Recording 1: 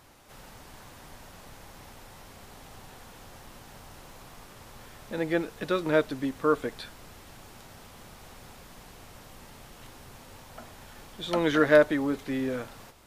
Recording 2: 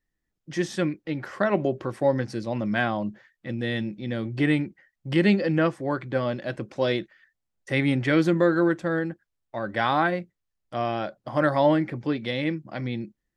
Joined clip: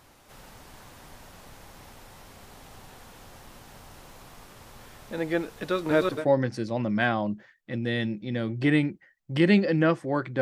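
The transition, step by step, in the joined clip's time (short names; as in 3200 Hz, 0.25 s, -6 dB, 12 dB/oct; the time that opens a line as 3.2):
recording 1
5.72–6.26 reverse delay 0.186 s, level 0 dB
6.17 switch to recording 2 from 1.93 s, crossfade 0.18 s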